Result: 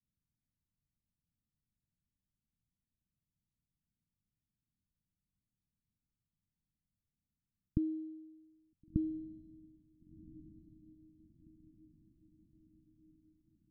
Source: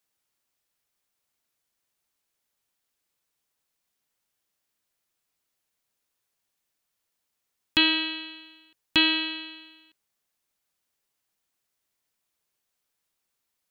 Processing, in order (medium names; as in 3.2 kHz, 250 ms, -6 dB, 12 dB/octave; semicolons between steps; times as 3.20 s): inverse Chebyshev low-pass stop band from 910 Hz, stop band 70 dB; echo that smears into a reverb 1443 ms, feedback 51%, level -16 dB; trim +9.5 dB